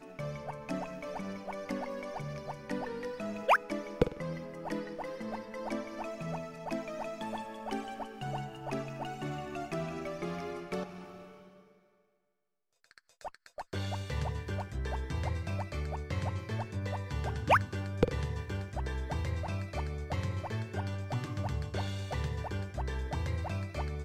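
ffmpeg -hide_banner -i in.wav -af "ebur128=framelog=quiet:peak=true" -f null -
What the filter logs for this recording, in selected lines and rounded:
Integrated loudness:
  I:         -36.5 LUFS
  Threshold: -46.8 LUFS
Loudness range:
  LRA:         8.0 LU
  Threshold: -56.9 LUFS
  LRA low:   -41.6 LUFS
  LRA high:  -33.6 LUFS
True peak:
  Peak:      -11.5 dBFS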